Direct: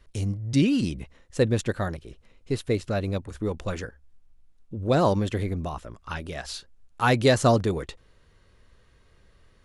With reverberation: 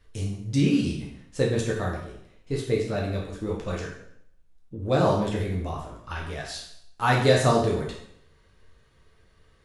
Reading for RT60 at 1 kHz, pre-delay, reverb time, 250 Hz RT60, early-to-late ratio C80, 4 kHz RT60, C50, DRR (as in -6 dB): 0.70 s, 4 ms, 0.70 s, 0.75 s, 8.0 dB, 0.65 s, 4.5 dB, -3.0 dB